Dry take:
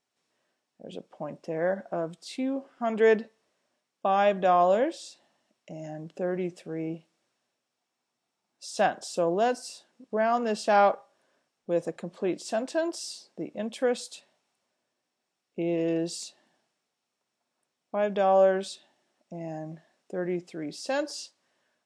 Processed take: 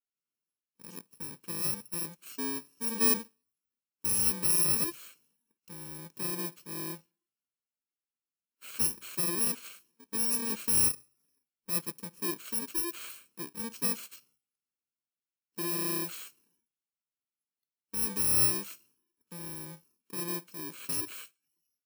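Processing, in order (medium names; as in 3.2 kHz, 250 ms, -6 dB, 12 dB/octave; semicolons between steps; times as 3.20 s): bit-reversed sample order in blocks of 64 samples; spectral noise reduction 14 dB; trim -5 dB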